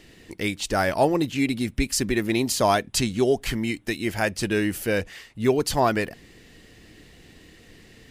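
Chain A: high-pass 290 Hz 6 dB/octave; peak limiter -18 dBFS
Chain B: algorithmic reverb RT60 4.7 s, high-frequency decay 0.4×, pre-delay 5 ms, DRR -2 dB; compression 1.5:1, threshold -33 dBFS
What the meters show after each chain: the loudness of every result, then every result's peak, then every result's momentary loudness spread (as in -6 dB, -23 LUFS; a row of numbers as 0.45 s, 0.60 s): -29.5 LUFS, -26.5 LUFS; -18.0 dBFS, -12.0 dBFS; 6 LU, 11 LU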